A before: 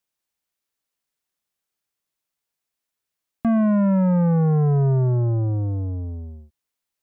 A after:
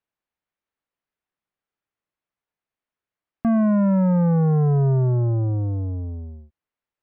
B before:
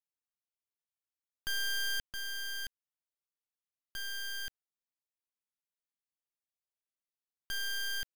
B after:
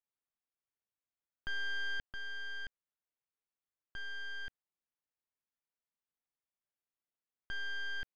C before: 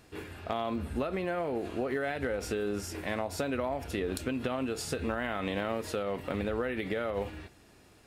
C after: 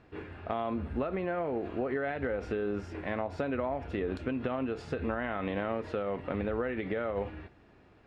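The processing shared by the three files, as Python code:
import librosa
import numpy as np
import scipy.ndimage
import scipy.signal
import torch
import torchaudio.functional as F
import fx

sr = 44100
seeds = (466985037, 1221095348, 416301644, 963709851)

y = scipy.signal.sosfilt(scipy.signal.butter(2, 2200.0, 'lowpass', fs=sr, output='sos'), x)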